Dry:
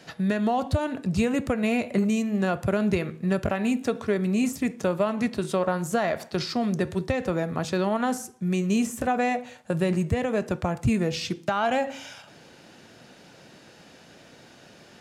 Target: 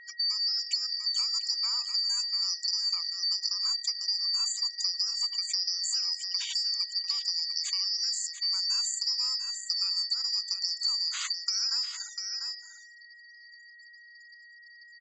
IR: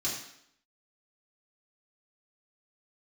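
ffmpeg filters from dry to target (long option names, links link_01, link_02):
-af "afftfilt=real='real(if(lt(b,272),68*(eq(floor(b/68),0)*1+eq(floor(b/68),1)*2+eq(floor(b/68),2)*3+eq(floor(b/68),3)*0)+mod(b,68),b),0)':imag='imag(if(lt(b,272),68*(eq(floor(b/68),0)*1+eq(floor(b/68),1)*2+eq(floor(b/68),2)*3+eq(floor(b/68),3)*0)+mod(b,68),b),0)':win_size=2048:overlap=0.75,lowpass=frequency=7200:width_type=q:width=14,afftfilt=real='re*gte(hypot(re,im),0.0251)':imag='im*gte(hypot(re,im),0.0251)':win_size=1024:overlap=0.75,aeval=exprs='val(0)+0.00501*sin(2*PI*1900*n/s)':channel_layout=same,highpass=frequency=1300:width=0.5412,highpass=frequency=1300:width=1.3066,highshelf=frequency=4900:gain=-9.5,aecho=1:1:695:0.266,acompressor=threshold=-28dB:ratio=3"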